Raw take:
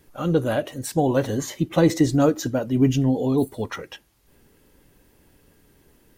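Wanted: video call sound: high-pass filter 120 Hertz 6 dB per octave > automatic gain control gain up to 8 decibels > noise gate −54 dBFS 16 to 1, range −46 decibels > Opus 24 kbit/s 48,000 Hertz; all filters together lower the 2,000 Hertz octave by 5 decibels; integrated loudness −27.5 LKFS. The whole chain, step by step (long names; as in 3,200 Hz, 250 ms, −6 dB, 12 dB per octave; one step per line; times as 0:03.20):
high-pass filter 120 Hz 6 dB per octave
parametric band 2,000 Hz −7 dB
automatic gain control gain up to 8 dB
noise gate −54 dBFS 16 to 1, range −46 dB
level −4.5 dB
Opus 24 kbit/s 48,000 Hz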